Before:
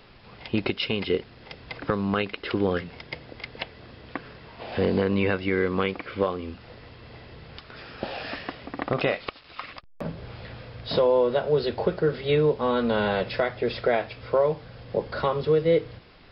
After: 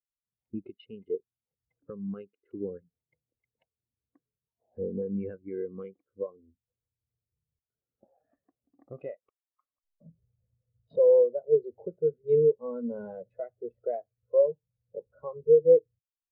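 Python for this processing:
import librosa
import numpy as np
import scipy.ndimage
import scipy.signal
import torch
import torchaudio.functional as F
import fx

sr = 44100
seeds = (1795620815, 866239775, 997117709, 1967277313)

y = fx.wiener(x, sr, points=15)
y = fx.spectral_expand(y, sr, expansion=2.5)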